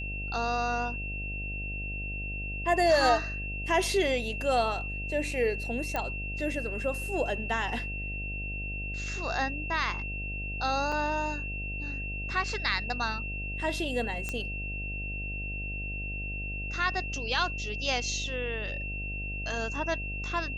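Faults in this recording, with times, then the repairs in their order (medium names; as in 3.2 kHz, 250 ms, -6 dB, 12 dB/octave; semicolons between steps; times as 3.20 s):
buzz 50 Hz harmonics 15 -37 dBFS
whine 2.7 kHz -36 dBFS
5.96 s: pop -17 dBFS
10.92 s: dropout 3.7 ms
14.29 s: pop -18 dBFS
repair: de-click; de-hum 50 Hz, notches 15; band-stop 2.7 kHz, Q 30; interpolate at 10.92 s, 3.7 ms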